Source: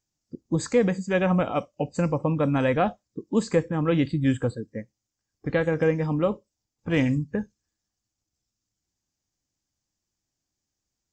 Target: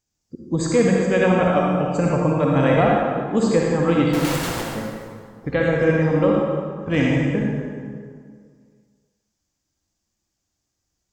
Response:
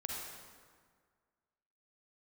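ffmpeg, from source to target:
-filter_complex "[0:a]asettb=1/sr,asplit=3[s0][s1][s2];[s0]atrim=end=4.124[s3];[s1]atrim=start=4.12:end=4.72,asetpts=PTS-STARTPTS,afade=t=in:d=0.004:c=qsin,afade=t=out:st=0.596:d=0.004:c=qsin,aeval=exprs='(mod(21.1*val(0)+1,2)-1)/21.1':c=same[s4];[s2]atrim=start=4.716[s5];[s3][s4]acrossfade=d=0.004:c1=hsin:c2=qsin[s6];[s6][s5]acrossfade=d=0.004:c1=qsin:c2=hsin[s7];[1:a]atrim=start_sample=2205,asetrate=38367,aresample=44100[s8];[s7][s8]afir=irnorm=-1:irlink=0,volume=1.78"

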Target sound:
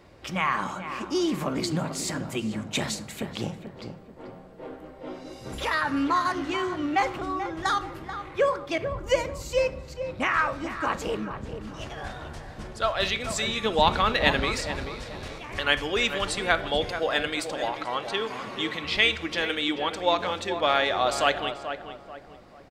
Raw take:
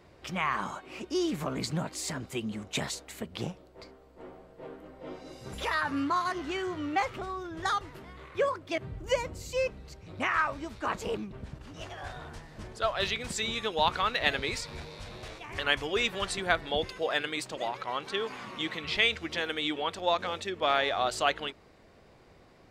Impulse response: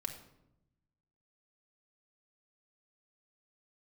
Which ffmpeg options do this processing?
-filter_complex "[0:a]asettb=1/sr,asplit=3[s0][s1][s2];[s0]atrim=end=13.634[s3];[s1]atrim=start=13.63:end=14.45,asetpts=PTS-STARTPTS,afade=t=in:d=0.004:c=qsin,afade=t=out:st=0.816:d=0.004:c=qsin,lowshelf=f=440:g=7.5[s4];[s2]atrim=start=14.446[s5];[s3][s4]acrossfade=d=0.004:c1=hsin:c2=qsin[s6];[s6][s5]acrossfade=d=0.004:c1=qsin:c2=hsin,asplit=2[s7][s8];[s8]adelay=436,lowpass=f=1700:p=1,volume=0.376,asplit=2[s9][s10];[s10]adelay=436,lowpass=f=1700:p=1,volume=0.38,asplit=2[s11][s12];[s12]adelay=436,lowpass=f=1700:p=1,volume=0.38,asplit=2[s13][s14];[s14]adelay=436,lowpass=f=1700:p=1,volume=0.38[s15];[s7][s9][s11][s13][s15]amix=inputs=5:normalize=0,asplit=2[s16][s17];[1:a]atrim=start_sample=2205[s18];[s17][s18]afir=irnorm=-1:irlink=0,volume=0.708[s19];[s16][s19]amix=inputs=2:normalize=0"

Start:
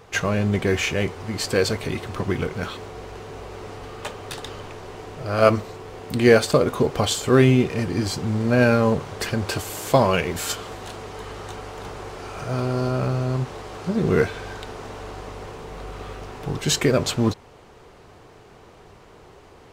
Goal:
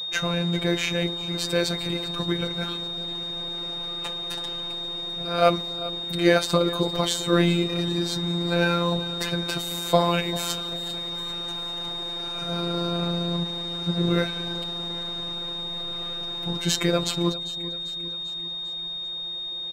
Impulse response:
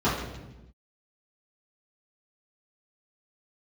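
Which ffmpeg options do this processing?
-af "afftfilt=real='hypot(re,im)*cos(PI*b)':imag='0':win_size=1024:overlap=0.75,aeval=exprs='val(0)+0.0355*sin(2*PI*3700*n/s)':c=same,aecho=1:1:395|790|1185|1580|1975:0.15|0.0868|0.0503|0.0292|0.0169"

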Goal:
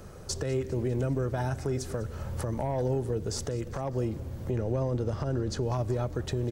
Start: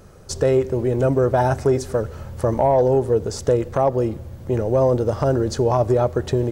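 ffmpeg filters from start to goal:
-filter_complex "[0:a]asettb=1/sr,asplit=3[s0][s1][s2];[s0]atrim=end=4.514[s3];[s1]atrim=start=4.51:end=5.63,asetpts=PTS-STARTPTS,afade=t=in:d=0.004:c=qsin,afade=t=out:st=1.116:d=0.004:c=qsin,highshelf=f=8800:g=-11[s4];[s2]atrim=start=5.626[s5];[s3][s4]acrossfade=d=0.004:c1=hsin:c2=qsin[s6];[s6][s5]acrossfade=d=0.004:c1=qsin:c2=hsin,acrossover=split=290|1400[s7][s8][s9];[s8]acompressor=threshold=0.0355:ratio=4[s10];[s7][s10][s9]amix=inputs=3:normalize=0,alimiter=limit=0.0891:level=0:latency=1:release=467,asplit=6[s11][s12][s13][s14][s15][s16];[s12]adelay=200,afreqshift=-79,volume=0.106[s17];[s13]adelay=400,afreqshift=-158,volume=0.0603[s18];[s14]adelay=600,afreqshift=-237,volume=0.0343[s19];[s15]adelay=800,afreqshift=-316,volume=0.0197[s20];[s16]adelay=1000,afreqshift=-395,volume=0.0112[s21];[s11][s17][s18][s19][s20][s21]amix=inputs=6:normalize=0"

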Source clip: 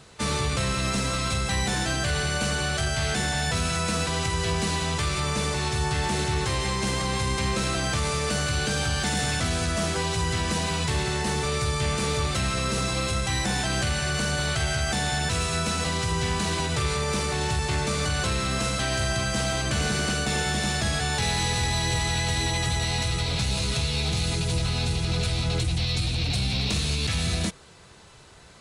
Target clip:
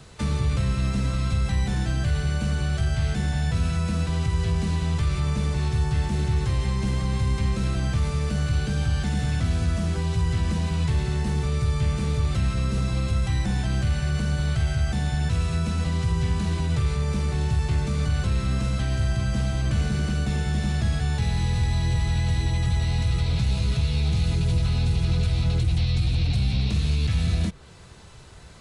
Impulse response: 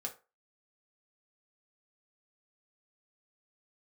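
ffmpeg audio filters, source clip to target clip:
-filter_complex "[0:a]lowshelf=f=150:g=10.5,acrossover=split=270|4300[s0][s1][s2];[s0]acompressor=threshold=0.112:ratio=4[s3];[s1]acompressor=threshold=0.0158:ratio=4[s4];[s2]acompressor=threshold=0.00398:ratio=4[s5];[s3][s4][s5]amix=inputs=3:normalize=0"

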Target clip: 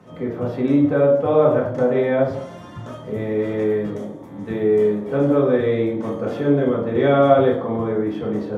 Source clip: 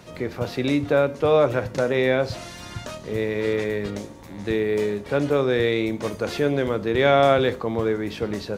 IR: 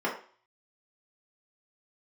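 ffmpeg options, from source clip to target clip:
-filter_complex "[0:a]asettb=1/sr,asplit=3[s0][s1][s2];[s0]atrim=end=2.924[s3];[s1]atrim=start=2.92:end=5.37,asetpts=PTS-STARTPTS,afade=t=in:d=0.004:c=qsin,afade=t=out:st=2.446:d=0.004:c=qsin,highshelf=f=7400:g=7[s4];[s2]atrim=start=5.366[s5];[s3][s4]acrossfade=d=0.004:c1=hsin:c2=qsin[s6];[s6][s5]acrossfade=d=0.004:c1=qsin:c2=hsin[s7];[1:a]atrim=start_sample=2205,asetrate=27342,aresample=44100[s8];[s7][s8]afir=irnorm=-1:irlink=0,volume=0.237"

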